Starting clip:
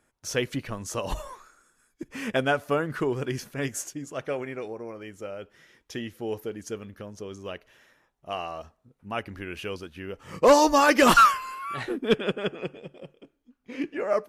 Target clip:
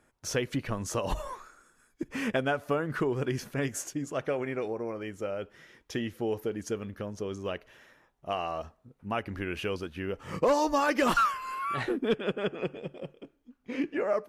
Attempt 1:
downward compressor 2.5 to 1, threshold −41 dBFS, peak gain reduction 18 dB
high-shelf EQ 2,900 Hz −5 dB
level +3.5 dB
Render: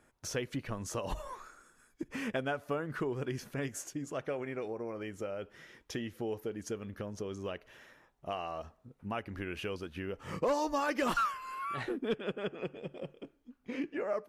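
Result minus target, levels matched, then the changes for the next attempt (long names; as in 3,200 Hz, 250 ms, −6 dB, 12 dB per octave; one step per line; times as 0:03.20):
downward compressor: peak gain reduction +6 dB
change: downward compressor 2.5 to 1, threshold −31 dBFS, peak gain reduction 12 dB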